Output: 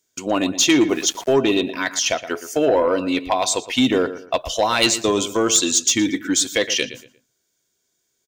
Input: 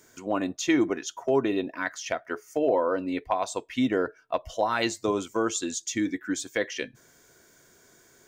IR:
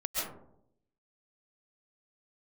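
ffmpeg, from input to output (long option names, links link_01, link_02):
-filter_complex "[0:a]agate=range=-28dB:threshold=-50dB:ratio=16:detection=peak,highshelf=frequency=2300:width_type=q:width=1.5:gain=8,asplit=2[link_01][link_02];[link_02]adelay=117,lowpass=frequency=3000:poles=1,volume=-13.5dB,asplit=2[link_03][link_04];[link_04]adelay=117,lowpass=frequency=3000:poles=1,volume=0.3,asplit=2[link_05][link_06];[link_06]adelay=117,lowpass=frequency=3000:poles=1,volume=0.3[link_07];[link_01][link_03][link_05][link_07]amix=inputs=4:normalize=0,asoftclip=type=tanh:threshold=-15.5dB,acontrast=62,asettb=1/sr,asplit=3[link_08][link_09][link_10];[link_08]atrim=end=0.894[link_11];[link_09]atrim=start=0.89:end=1.34,asetpts=PTS-STARTPTS,afade=type=in:duration=0.004:curve=qsin,afade=type=out:start_time=0.446:duration=0.004:curve=qsin,aeval=exprs='val(0)*gte(abs(val(0)),0.0133)':channel_layout=same[link_12];[link_10]atrim=start=1.336[link_13];[link_11][link_12]acrossfade=duration=0.004:curve1=hsin:curve2=qsin[link_14];[link_14][link_13]acrossfade=duration=0.004:curve1=qsin:curve2=hsin,volume=2dB" -ar 44100 -c:a libmp3lame -b:a 320k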